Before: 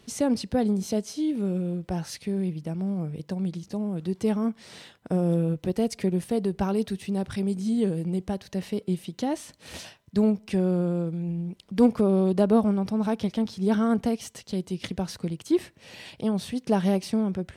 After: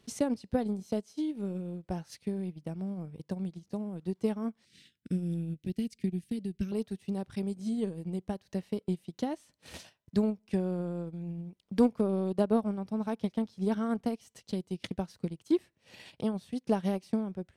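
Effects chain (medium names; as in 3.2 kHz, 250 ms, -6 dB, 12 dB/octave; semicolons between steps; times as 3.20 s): 4.65–6.72 s: Chebyshev band-stop 270–2300 Hz, order 2; transient shaper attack +6 dB, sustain -10 dB; trim -8.5 dB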